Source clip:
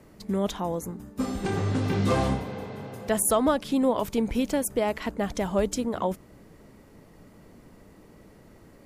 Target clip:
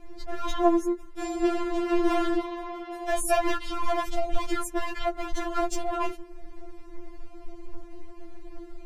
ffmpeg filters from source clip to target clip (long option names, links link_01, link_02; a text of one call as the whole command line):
ffmpeg -i in.wav -af "aemphasis=mode=reproduction:type=bsi,asoftclip=type=hard:threshold=-22dB,afftfilt=real='re*4*eq(mod(b,16),0)':imag='im*4*eq(mod(b,16),0)':win_size=2048:overlap=0.75,volume=7.5dB" out.wav